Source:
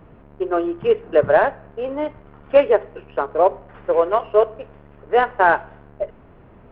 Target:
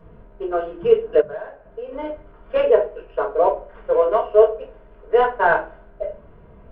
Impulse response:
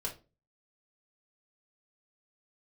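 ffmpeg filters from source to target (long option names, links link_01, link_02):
-filter_complex "[1:a]atrim=start_sample=2205[link_01];[0:a][link_01]afir=irnorm=-1:irlink=0,asplit=3[link_02][link_03][link_04];[link_02]afade=type=out:start_time=1.2:duration=0.02[link_05];[link_03]acompressor=threshold=-25dB:ratio=8,afade=type=in:start_time=1.2:duration=0.02,afade=type=out:start_time=1.92:duration=0.02[link_06];[link_04]afade=type=in:start_time=1.92:duration=0.02[link_07];[link_05][link_06][link_07]amix=inputs=3:normalize=0,volume=-3.5dB"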